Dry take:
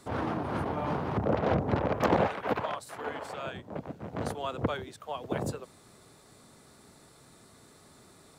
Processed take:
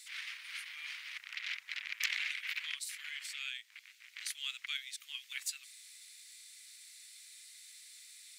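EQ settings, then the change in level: elliptic high-pass 2.1 kHz, stop band 70 dB; +7.5 dB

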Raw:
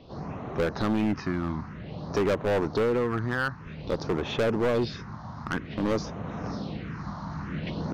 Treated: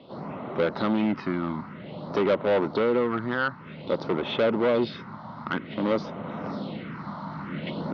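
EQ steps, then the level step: cabinet simulation 270–3400 Hz, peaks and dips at 310 Hz -5 dB, 440 Hz -7 dB, 750 Hz -7 dB, 1.1 kHz -5 dB, 1.7 kHz -10 dB, 2.7 kHz -5 dB; band-stop 2.4 kHz, Q 18; +8.0 dB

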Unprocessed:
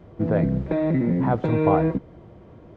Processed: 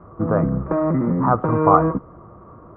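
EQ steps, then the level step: resonant low-pass 1.2 kHz, resonance Q 11; distance through air 240 m; +1.5 dB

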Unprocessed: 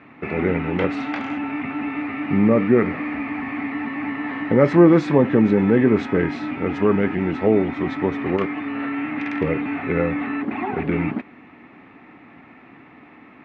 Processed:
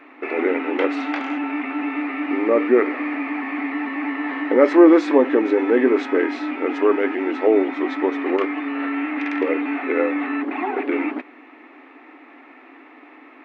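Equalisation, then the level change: brick-wall FIR high-pass 250 Hz; +2.0 dB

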